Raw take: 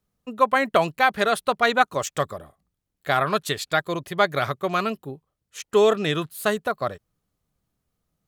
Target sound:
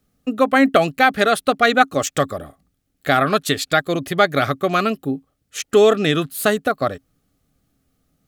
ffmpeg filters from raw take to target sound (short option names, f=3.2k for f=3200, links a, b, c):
-filter_complex "[0:a]asuperstop=centerf=970:order=4:qfactor=4.7,equalizer=f=270:w=8:g=12,asplit=2[a][b];[b]acompressor=threshold=-31dB:ratio=6,volume=1dB[c];[a][c]amix=inputs=2:normalize=0,volume=3dB"